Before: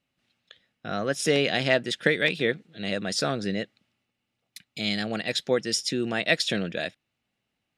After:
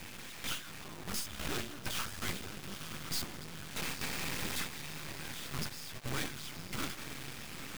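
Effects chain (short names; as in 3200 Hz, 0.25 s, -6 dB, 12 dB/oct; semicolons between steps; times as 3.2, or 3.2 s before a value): infinite clipping; notches 60/120/180/240/300/360/420/480/540 Hz; gate with hold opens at -24 dBFS; compressor, threshold -35 dBFS, peak gain reduction 7.5 dB; limiter -35.5 dBFS, peak gain reduction 10 dB; frequency shift -360 Hz; diffused feedback echo 0.938 s, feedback 52%, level -8.5 dB; half-wave rectifier; gain +7 dB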